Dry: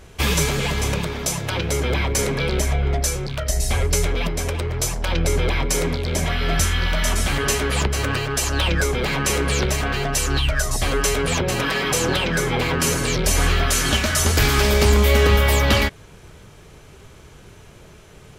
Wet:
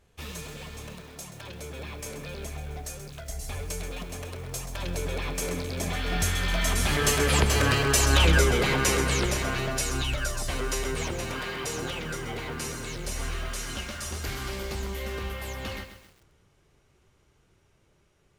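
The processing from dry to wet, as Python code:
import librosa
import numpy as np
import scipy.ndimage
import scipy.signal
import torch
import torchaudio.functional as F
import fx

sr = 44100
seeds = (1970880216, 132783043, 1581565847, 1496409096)

y = fx.doppler_pass(x, sr, speed_mps=20, closest_m=18.0, pass_at_s=7.89)
y = fx.echo_crushed(y, sr, ms=131, feedback_pct=55, bits=8, wet_db=-9.5)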